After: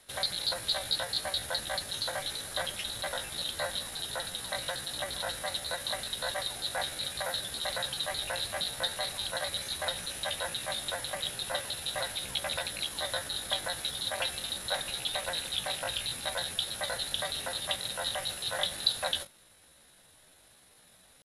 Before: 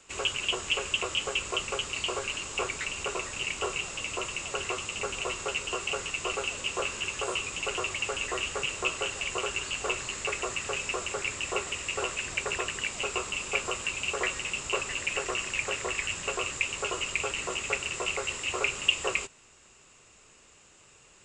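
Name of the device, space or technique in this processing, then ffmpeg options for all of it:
chipmunk voice: -af "asetrate=62367,aresample=44100,atempo=0.707107,volume=-2dB"

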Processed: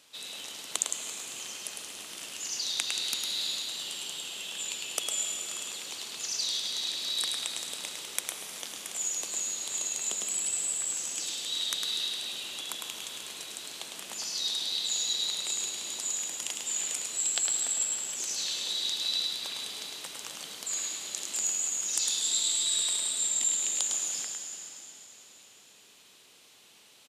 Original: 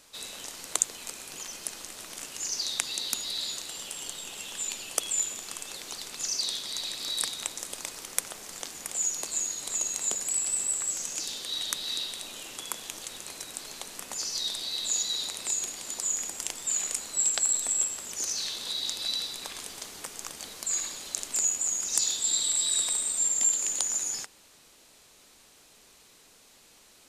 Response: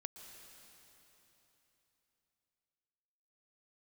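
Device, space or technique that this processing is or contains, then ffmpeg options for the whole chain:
PA in a hall: -filter_complex "[0:a]highpass=110,equalizer=frequency=3100:width_type=o:width=0.77:gain=7.5,aecho=1:1:105:0.596[link_01];[1:a]atrim=start_sample=2205[link_02];[link_01][link_02]afir=irnorm=-1:irlink=0"

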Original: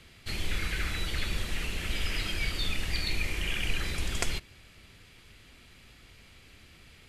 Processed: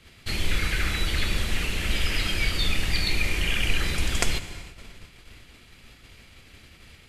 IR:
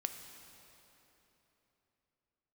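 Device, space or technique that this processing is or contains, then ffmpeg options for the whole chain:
keyed gated reverb: -filter_complex "[0:a]asplit=3[link_01][link_02][link_03];[1:a]atrim=start_sample=2205[link_04];[link_02][link_04]afir=irnorm=-1:irlink=0[link_05];[link_03]apad=whole_len=312249[link_06];[link_05][link_06]sidechaingate=range=-33dB:threshold=-53dB:ratio=16:detection=peak,volume=4.5dB[link_07];[link_01][link_07]amix=inputs=2:normalize=0,volume=-2dB"

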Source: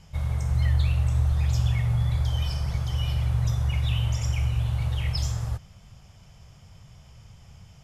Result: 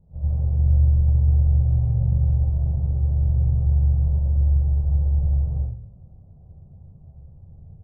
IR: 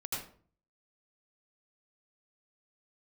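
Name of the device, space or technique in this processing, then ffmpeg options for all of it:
next room: -filter_complex "[0:a]lowpass=frequency=600:width=0.5412,lowpass=frequency=600:width=1.3066[link_01];[1:a]atrim=start_sample=2205[link_02];[link_01][link_02]afir=irnorm=-1:irlink=0"

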